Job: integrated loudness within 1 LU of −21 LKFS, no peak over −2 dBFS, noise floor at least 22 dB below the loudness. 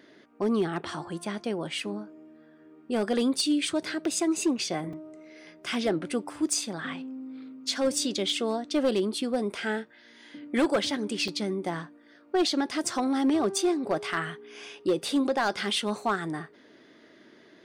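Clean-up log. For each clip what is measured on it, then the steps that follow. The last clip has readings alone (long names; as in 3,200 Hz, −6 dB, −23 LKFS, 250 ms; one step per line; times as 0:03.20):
share of clipped samples 0.5%; peaks flattened at −18.5 dBFS; number of dropouts 2; longest dropout 3.7 ms; integrated loudness −28.5 LKFS; sample peak −18.5 dBFS; target loudness −21.0 LKFS
→ clipped peaks rebuilt −18.5 dBFS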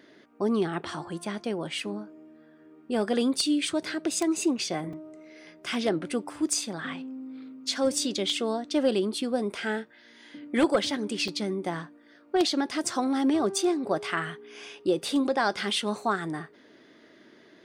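share of clipped samples 0.0%; number of dropouts 2; longest dropout 3.7 ms
→ repair the gap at 0:04.93/0:11.28, 3.7 ms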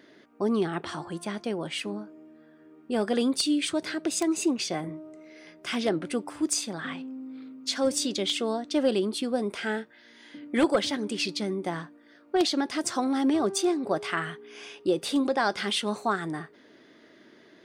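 number of dropouts 0; integrated loudness −28.5 LKFS; sample peak −10.0 dBFS; target loudness −21.0 LKFS
→ level +7.5 dB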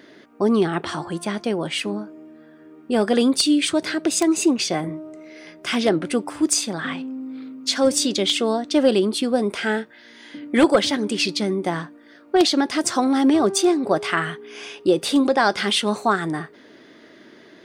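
integrated loudness −21.0 LKFS; sample peak −2.5 dBFS; background noise floor −49 dBFS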